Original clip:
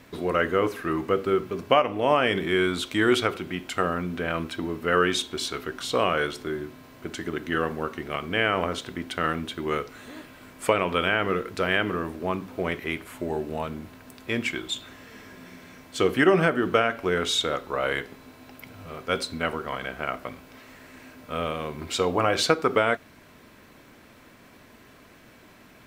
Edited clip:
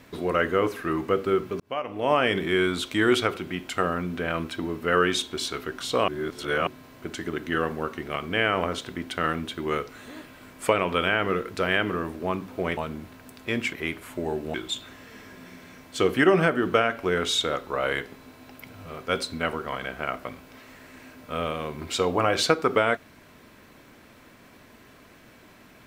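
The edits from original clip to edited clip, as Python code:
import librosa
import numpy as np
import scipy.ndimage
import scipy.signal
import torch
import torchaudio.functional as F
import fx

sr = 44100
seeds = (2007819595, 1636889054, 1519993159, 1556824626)

y = fx.edit(x, sr, fx.fade_in_span(start_s=1.6, length_s=0.58),
    fx.reverse_span(start_s=6.08, length_s=0.59),
    fx.move(start_s=12.77, length_s=0.81, to_s=14.54), tone=tone)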